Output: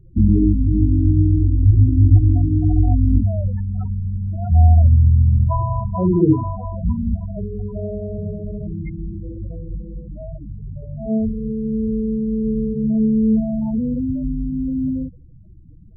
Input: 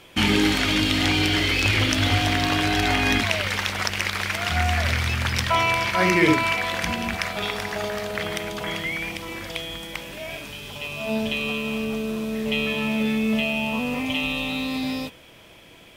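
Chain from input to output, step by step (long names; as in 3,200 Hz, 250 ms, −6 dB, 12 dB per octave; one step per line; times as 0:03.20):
running median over 15 samples
RIAA equalisation playback
spectral peaks only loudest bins 8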